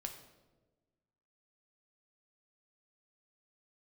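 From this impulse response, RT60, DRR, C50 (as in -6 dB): 1.2 s, 4.0 dB, 8.5 dB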